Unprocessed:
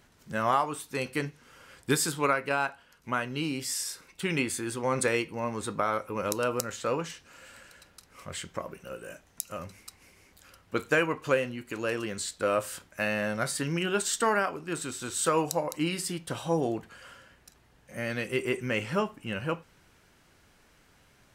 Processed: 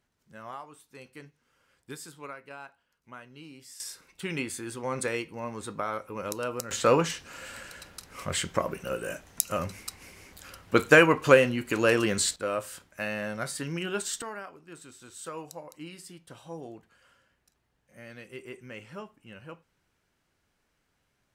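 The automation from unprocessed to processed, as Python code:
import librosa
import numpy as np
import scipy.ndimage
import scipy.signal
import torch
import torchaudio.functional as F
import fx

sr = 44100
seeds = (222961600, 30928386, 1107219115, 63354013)

y = fx.gain(x, sr, db=fx.steps((0.0, -16.0), (3.8, -4.0), (6.71, 8.0), (12.36, -3.5), (14.22, -13.5)))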